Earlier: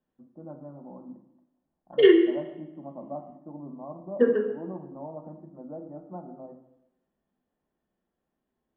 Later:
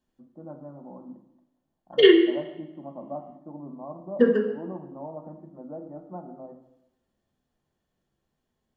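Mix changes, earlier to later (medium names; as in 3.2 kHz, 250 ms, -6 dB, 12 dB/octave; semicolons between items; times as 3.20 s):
second voice: remove high-pass 250 Hz 24 dB/octave; master: remove distance through air 440 m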